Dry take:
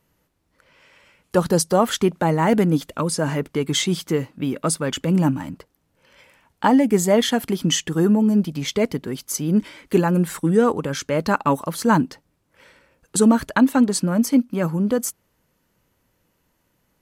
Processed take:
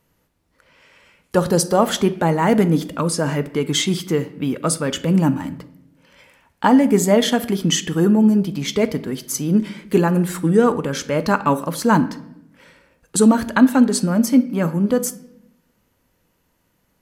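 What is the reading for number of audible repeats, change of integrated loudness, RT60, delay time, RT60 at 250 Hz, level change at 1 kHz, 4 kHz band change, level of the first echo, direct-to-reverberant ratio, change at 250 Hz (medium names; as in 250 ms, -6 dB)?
no echo, +2.0 dB, 0.80 s, no echo, 1.1 s, +1.5 dB, +1.5 dB, no echo, 11.5 dB, +2.5 dB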